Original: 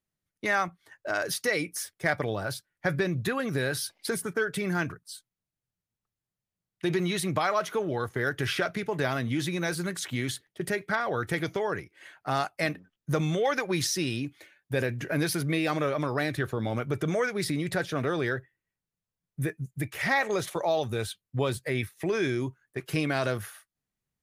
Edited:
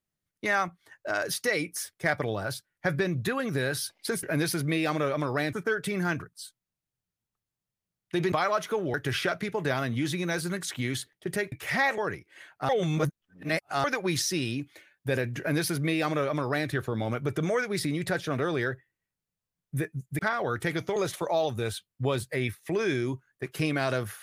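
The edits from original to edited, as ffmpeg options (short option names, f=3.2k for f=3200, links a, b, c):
-filter_complex "[0:a]asplit=11[a][b][c][d][e][f][g][h][i][j][k];[a]atrim=end=4.232[l];[b]atrim=start=15.038:end=16.342[m];[c]atrim=start=4.228:end=7.022[n];[d]atrim=start=7.348:end=7.972[o];[e]atrim=start=8.278:end=10.862[p];[f]atrim=start=19.838:end=20.302[q];[g]atrim=start=11.628:end=12.342[r];[h]atrim=start=12.338:end=13.492,asetpts=PTS-STARTPTS,areverse[s];[i]atrim=start=13.488:end=19.842[t];[j]atrim=start=10.858:end=11.632[u];[k]atrim=start=20.298[v];[l][m]acrossfade=d=0.004:c1=hsin:c2=hsin[w];[w][n]acrossfade=d=0.004:c1=hsin:c2=hsin[x];[x][o]acrossfade=d=0.004:c1=hsin:c2=hsin[y];[y][p]acrossfade=d=0.004:c1=hsin:c2=hsin[z];[z][q]acrossfade=d=0.004:c1=hsin:c2=hsin[aa];[aa][r]acrossfade=d=0.004:c1=hsin:c2=hsin[ab];[ab][s]acrossfade=d=0.004:c1=hsin:c2=hsin[ac];[ac][t]acrossfade=d=0.004:c1=hsin:c2=hsin[ad];[ad][u]acrossfade=d=0.004:c1=hsin:c2=hsin[ae];[ae][v]acrossfade=d=0.004:c1=hsin:c2=hsin"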